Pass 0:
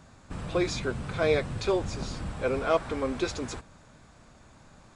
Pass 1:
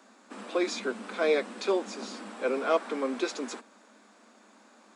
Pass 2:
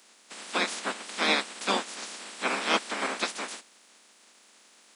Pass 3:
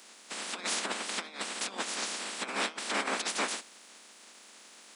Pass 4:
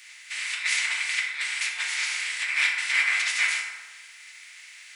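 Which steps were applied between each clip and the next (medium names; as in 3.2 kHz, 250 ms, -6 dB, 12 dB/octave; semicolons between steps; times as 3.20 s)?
Chebyshev high-pass 200 Hz, order 10
spectral peaks clipped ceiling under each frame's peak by 29 dB
compressor with a negative ratio -33 dBFS, ratio -0.5
resonant high-pass 2.1 kHz, resonance Q 4.6; FDN reverb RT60 1.4 s, low-frequency decay 1.2×, high-frequency decay 0.45×, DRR -2 dB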